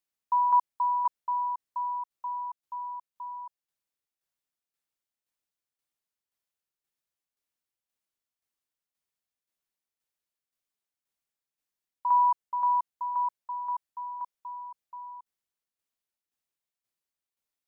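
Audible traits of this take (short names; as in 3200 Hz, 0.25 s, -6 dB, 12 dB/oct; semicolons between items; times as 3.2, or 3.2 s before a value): tremolo saw down 1.9 Hz, depth 55%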